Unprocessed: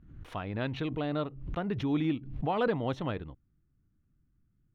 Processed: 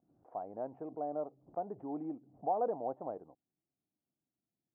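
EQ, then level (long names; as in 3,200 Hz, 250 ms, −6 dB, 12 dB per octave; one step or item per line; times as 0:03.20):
high-pass filter 330 Hz 12 dB per octave
transistor ladder low-pass 810 Hz, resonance 65%
high-frequency loss of the air 440 metres
+3.5 dB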